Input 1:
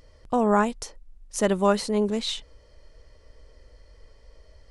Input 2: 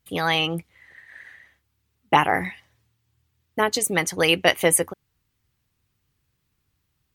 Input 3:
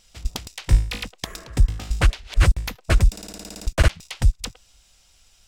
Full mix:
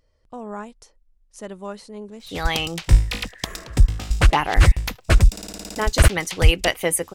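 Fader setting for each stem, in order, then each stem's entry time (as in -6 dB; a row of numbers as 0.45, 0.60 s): -12.5, -3.0, +2.5 dB; 0.00, 2.20, 2.20 s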